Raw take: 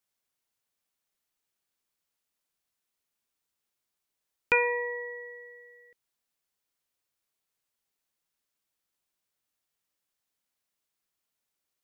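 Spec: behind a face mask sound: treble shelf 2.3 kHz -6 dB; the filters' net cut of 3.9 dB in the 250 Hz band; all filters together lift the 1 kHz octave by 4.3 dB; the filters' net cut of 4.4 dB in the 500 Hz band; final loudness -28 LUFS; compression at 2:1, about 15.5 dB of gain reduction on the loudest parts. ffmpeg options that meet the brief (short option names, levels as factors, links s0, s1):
-af "equalizer=f=250:t=o:g=-4,equalizer=f=500:t=o:g=-4.5,equalizer=f=1000:t=o:g=6.5,acompressor=threshold=0.00447:ratio=2,highshelf=f=2300:g=-6,volume=7.08"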